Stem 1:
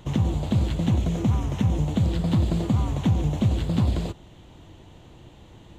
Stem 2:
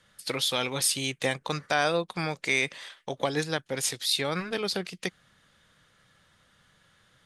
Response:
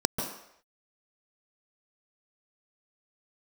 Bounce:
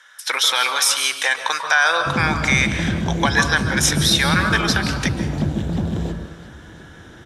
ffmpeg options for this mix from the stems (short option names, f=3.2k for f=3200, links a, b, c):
-filter_complex "[0:a]asoftclip=type=tanh:threshold=-21.5dB,adelay=2000,volume=-1dB,asplit=3[a][b][c];[b]volume=-11.5dB[d];[c]volume=-13dB[e];[1:a]highpass=f=1.3k:t=q:w=2.5,acontrast=78,alimiter=limit=-11dB:level=0:latency=1:release=24,volume=0dB,asplit=3[f][g][h];[g]volume=-7dB[i];[h]volume=-18dB[j];[2:a]atrim=start_sample=2205[k];[d][i]amix=inputs=2:normalize=0[l];[l][k]afir=irnorm=-1:irlink=0[m];[e][j]amix=inputs=2:normalize=0,aecho=0:1:348|696|1044|1392|1740|2088|2436|2784:1|0.53|0.281|0.149|0.0789|0.0418|0.0222|0.0117[n];[a][f][m][n]amix=inputs=4:normalize=0"